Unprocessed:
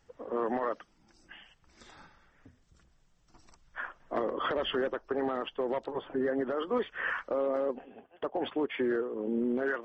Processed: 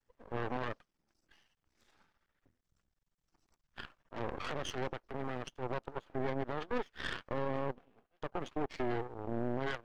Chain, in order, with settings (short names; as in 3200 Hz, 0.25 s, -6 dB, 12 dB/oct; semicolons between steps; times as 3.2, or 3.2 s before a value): added harmonics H 7 -20 dB, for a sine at -20 dBFS; 3.86–5.63 transient shaper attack -9 dB, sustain +4 dB; half-wave rectifier; gain -2 dB